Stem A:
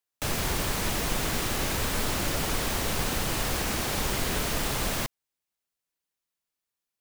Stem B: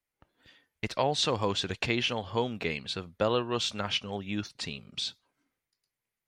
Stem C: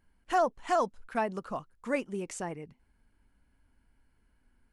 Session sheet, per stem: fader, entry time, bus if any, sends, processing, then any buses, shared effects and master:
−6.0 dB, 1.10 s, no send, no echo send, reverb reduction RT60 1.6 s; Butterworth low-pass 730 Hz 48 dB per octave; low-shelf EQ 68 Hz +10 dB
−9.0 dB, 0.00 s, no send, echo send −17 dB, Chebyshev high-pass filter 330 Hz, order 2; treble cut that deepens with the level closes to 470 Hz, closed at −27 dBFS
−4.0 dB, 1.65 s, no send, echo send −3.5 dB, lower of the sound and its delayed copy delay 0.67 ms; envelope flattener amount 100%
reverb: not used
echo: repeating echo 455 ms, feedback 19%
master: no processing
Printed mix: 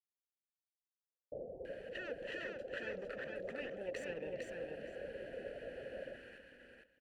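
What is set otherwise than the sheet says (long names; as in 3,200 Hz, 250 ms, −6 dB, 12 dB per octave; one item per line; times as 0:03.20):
stem A −6.0 dB → +0.5 dB
stem B: muted
master: extra formant filter e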